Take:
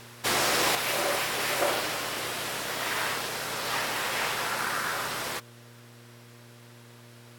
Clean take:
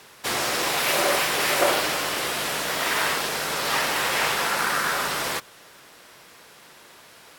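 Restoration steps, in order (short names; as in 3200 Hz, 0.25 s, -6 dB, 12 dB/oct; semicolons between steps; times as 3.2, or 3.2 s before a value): de-hum 118.6 Hz, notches 5; gain 0 dB, from 0.75 s +6 dB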